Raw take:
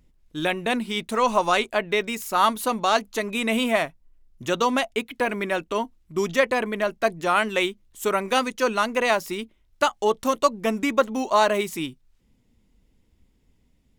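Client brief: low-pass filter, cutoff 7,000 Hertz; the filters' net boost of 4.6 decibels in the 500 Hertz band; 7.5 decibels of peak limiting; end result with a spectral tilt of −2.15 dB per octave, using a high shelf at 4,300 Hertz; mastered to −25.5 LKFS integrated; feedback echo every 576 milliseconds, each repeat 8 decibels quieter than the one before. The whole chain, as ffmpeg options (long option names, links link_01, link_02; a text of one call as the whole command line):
ffmpeg -i in.wav -af "lowpass=7000,equalizer=frequency=500:width_type=o:gain=5.5,highshelf=frequency=4300:gain=4,alimiter=limit=-10dB:level=0:latency=1,aecho=1:1:576|1152|1728|2304|2880:0.398|0.159|0.0637|0.0255|0.0102,volume=-3dB" out.wav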